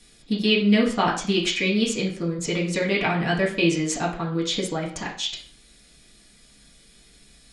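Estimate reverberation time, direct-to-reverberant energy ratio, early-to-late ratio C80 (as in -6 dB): 0.45 s, -5.0 dB, 12.5 dB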